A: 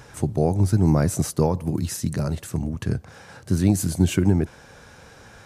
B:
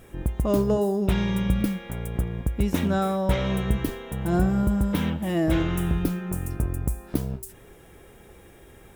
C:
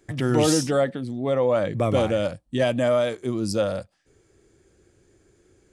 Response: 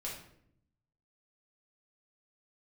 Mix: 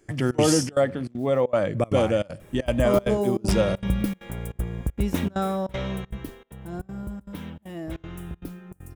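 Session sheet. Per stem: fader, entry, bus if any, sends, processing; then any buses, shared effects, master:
−15.5 dB, 0.10 s, no send, short delay modulated by noise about 1,500 Hz, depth 0.17 ms; automatic ducking −21 dB, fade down 1.80 s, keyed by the third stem
0:05.65 −1 dB → 0:06.45 −11.5 dB, 2.40 s, no send, no processing
0.0 dB, 0.00 s, send −20.5 dB, notch filter 3,800 Hz, Q 5.1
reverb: on, RT60 0.70 s, pre-delay 5 ms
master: gate pattern "xxxx.xxxx." 196 BPM −24 dB

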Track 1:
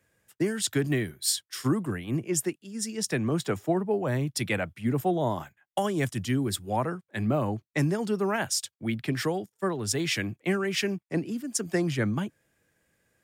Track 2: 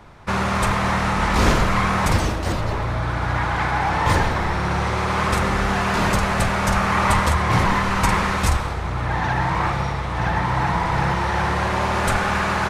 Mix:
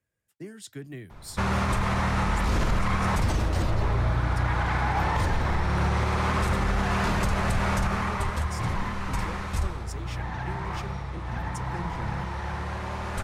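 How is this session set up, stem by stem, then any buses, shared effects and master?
−10.5 dB, 0.00 s, no send, flanger 0.84 Hz, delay 0.7 ms, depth 5.6 ms, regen −83%
0:07.78 −5 dB → 0:08.20 −13.5 dB, 1.10 s, no send, no processing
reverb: not used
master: low-shelf EQ 110 Hz +9 dB; brickwall limiter −16 dBFS, peak gain reduction 11 dB

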